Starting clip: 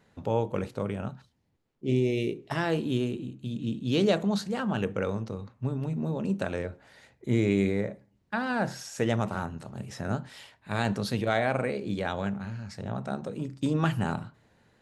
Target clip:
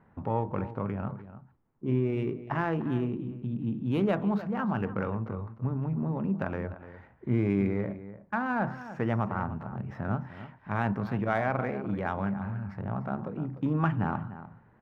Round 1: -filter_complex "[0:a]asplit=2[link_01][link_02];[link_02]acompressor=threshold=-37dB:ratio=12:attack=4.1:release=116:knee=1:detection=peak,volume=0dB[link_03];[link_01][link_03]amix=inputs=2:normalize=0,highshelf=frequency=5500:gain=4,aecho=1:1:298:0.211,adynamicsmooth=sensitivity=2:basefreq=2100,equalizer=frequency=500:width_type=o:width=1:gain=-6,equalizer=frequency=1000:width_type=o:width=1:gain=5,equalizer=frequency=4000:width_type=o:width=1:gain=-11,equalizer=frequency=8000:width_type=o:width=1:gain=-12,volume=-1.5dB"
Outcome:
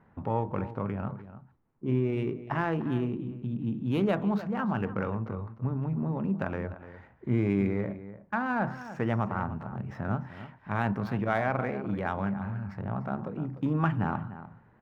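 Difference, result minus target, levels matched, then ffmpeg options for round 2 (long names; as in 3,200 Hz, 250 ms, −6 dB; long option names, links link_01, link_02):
8,000 Hz band +3.5 dB
-filter_complex "[0:a]asplit=2[link_01][link_02];[link_02]acompressor=threshold=-37dB:ratio=12:attack=4.1:release=116:knee=1:detection=peak,volume=0dB[link_03];[link_01][link_03]amix=inputs=2:normalize=0,highshelf=frequency=5500:gain=-3.5,aecho=1:1:298:0.211,adynamicsmooth=sensitivity=2:basefreq=2100,equalizer=frequency=500:width_type=o:width=1:gain=-6,equalizer=frequency=1000:width_type=o:width=1:gain=5,equalizer=frequency=4000:width_type=o:width=1:gain=-11,equalizer=frequency=8000:width_type=o:width=1:gain=-12,volume=-1.5dB"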